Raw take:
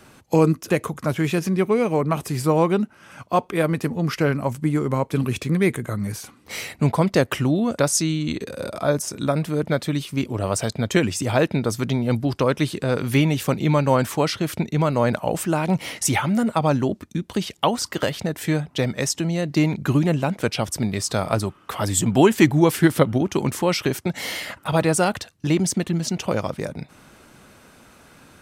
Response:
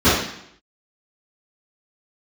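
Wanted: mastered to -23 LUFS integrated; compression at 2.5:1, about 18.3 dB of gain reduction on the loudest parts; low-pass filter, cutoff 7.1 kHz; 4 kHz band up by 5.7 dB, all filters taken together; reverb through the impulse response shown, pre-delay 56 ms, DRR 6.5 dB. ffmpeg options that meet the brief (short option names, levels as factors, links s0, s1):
-filter_complex "[0:a]lowpass=7100,equalizer=f=4000:t=o:g=8,acompressor=threshold=0.0112:ratio=2.5,asplit=2[s0][s1];[1:a]atrim=start_sample=2205,adelay=56[s2];[s1][s2]afir=irnorm=-1:irlink=0,volume=0.0282[s3];[s0][s3]amix=inputs=2:normalize=0,volume=3.55"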